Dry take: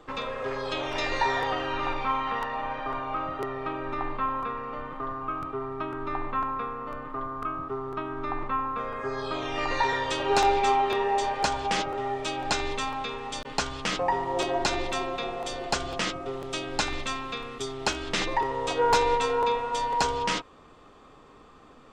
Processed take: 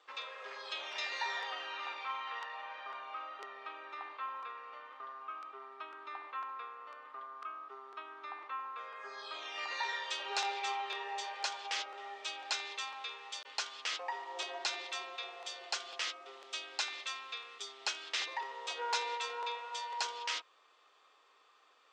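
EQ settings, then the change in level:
high-pass filter 360 Hz 24 dB per octave
high-frequency loss of the air 150 metres
first difference
+4.5 dB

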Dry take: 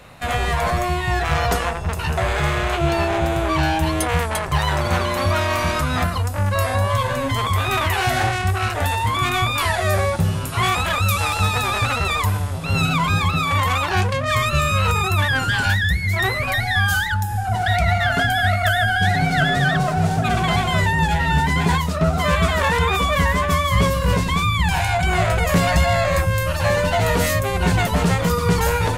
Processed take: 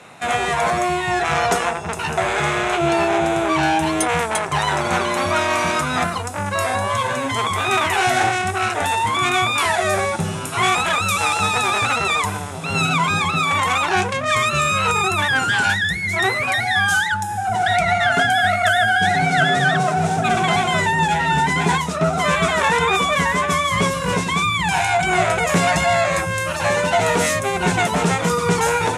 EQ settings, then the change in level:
loudspeaker in its box 230–10,000 Hz, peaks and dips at 270 Hz −4 dB, 550 Hz −7 dB, 1,100 Hz −4 dB, 1,800 Hz −4 dB, 3,000 Hz −4 dB, 4,500 Hz −8 dB
+5.5 dB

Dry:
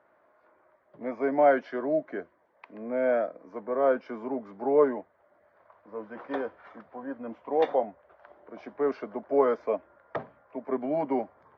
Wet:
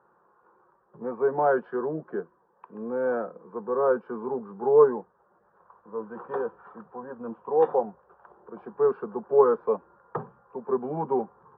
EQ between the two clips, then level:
low-pass filter 2,200 Hz 24 dB per octave
low-shelf EQ 180 Hz +7 dB
phaser with its sweep stopped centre 420 Hz, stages 8
+4.5 dB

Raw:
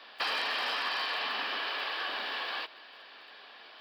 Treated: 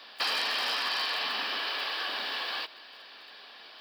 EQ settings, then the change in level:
bass and treble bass +4 dB, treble +10 dB
0.0 dB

